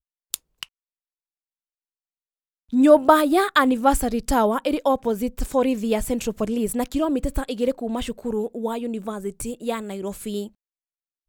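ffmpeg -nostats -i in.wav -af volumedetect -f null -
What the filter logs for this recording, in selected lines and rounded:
mean_volume: -23.3 dB
max_volume: -1.5 dB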